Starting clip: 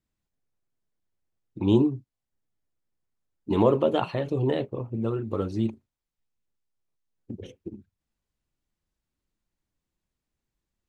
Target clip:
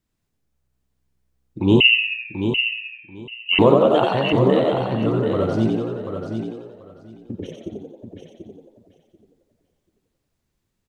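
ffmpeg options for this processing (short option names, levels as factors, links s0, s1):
-filter_complex "[0:a]asplit=2[s0][s1];[s1]asplit=7[s2][s3][s4][s5][s6][s7][s8];[s2]adelay=89,afreqshift=64,volume=0.668[s9];[s3]adelay=178,afreqshift=128,volume=0.359[s10];[s4]adelay=267,afreqshift=192,volume=0.195[s11];[s5]adelay=356,afreqshift=256,volume=0.105[s12];[s6]adelay=445,afreqshift=320,volume=0.0569[s13];[s7]adelay=534,afreqshift=384,volume=0.0305[s14];[s8]adelay=623,afreqshift=448,volume=0.0166[s15];[s9][s10][s11][s12][s13][s14][s15]amix=inputs=7:normalize=0[s16];[s0][s16]amix=inputs=2:normalize=0,asettb=1/sr,asplit=3[s17][s18][s19];[s17]atrim=end=1.804[s20];[s18]atrim=start=1.8:end=3.59,asetpts=PTS-STARTPTS,afade=t=in:d=0.004:c=qsin,afade=t=out:st=1.786:d=0.004:c=qsin,lowpass=f=2600:t=q:w=0.5098,lowpass=f=2600:t=q:w=0.6013,lowpass=f=2600:t=q:w=0.9,lowpass=f=2600:t=q:w=2.563,afreqshift=-3100[s21];[s19]atrim=start=3.586[s22];[s20][s21]acrossfade=d=0.004:c1=hsin:c2=qsin[s23];[s23][s22]acrossfade=d=0.004:c1=qsin:c2=hsin,asplit=2[s24][s25];[s25]aecho=0:1:737|1474|2211:0.422|0.0717|0.0122[s26];[s24][s26]amix=inputs=2:normalize=0,volume=1.88"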